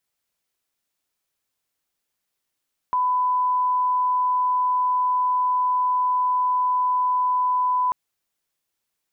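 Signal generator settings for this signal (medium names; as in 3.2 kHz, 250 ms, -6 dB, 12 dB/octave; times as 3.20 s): line-up tone -18 dBFS 4.99 s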